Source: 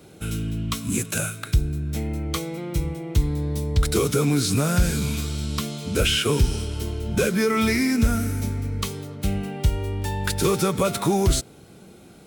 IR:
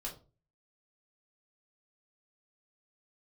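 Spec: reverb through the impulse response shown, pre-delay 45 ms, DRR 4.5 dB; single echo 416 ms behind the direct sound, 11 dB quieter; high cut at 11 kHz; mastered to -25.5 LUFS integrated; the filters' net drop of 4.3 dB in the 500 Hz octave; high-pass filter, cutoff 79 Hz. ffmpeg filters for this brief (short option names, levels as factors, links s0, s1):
-filter_complex "[0:a]highpass=79,lowpass=11000,equalizer=f=500:t=o:g=-5.5,aecho=1:1:416:0.282,asplit=2[s0][s1];[1:a]atrim=start_sample=2205,adelay=45[s2];[s1][s2]afir=irnorm=-1:irlink=0,volume=0.668[s3];[s0][s3]amix=inputs=2:normalize=0,volume=0.841"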